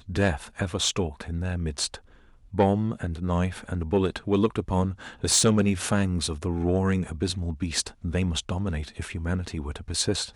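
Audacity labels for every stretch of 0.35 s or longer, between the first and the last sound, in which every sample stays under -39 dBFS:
1.970000	2.530000	silence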